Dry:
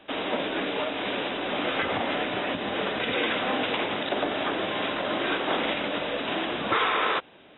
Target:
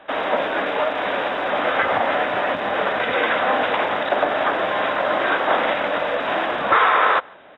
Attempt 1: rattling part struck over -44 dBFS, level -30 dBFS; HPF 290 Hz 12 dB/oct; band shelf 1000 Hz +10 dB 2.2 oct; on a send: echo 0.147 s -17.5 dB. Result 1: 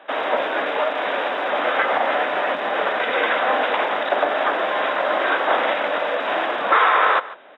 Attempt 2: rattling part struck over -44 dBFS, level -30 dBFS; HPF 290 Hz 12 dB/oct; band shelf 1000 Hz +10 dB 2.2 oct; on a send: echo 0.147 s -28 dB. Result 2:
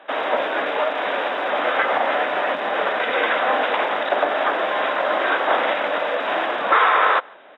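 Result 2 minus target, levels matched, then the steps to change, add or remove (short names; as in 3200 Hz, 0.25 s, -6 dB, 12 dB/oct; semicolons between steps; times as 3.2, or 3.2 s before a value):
250 Hz band -3.0 dB
remove: HPF 290 Hz 12 dB/oct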